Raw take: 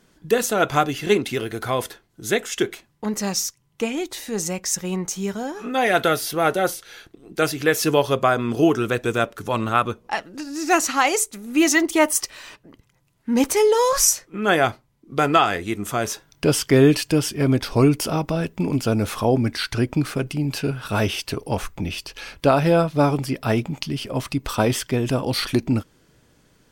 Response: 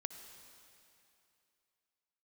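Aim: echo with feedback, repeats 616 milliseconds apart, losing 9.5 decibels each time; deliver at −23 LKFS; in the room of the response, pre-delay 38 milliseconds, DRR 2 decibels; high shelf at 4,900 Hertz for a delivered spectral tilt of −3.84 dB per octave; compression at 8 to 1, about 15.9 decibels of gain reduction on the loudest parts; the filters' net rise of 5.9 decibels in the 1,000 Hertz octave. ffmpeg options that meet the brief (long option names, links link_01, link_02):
-filter_complex "[0:a]equalizer=frequency=1000:width_type=o:gain=8,highshelf=frequency=4900:gain=4,acompressor=threshold=-25dB:ratio=8,aecho=1:1:616|1232|1848|2464:0.335|0.111|0.0365|0.012,asplit=2[link_01][link_02];[1:a]atrim=start_sample=2205,adelay=38[link_03];[link_02][link_03]afir=irnorm=-1:irlink=0,volume=0dB[link_04];[link_01][link_04]amix=inputs=2:normalize=0,volume=4dB"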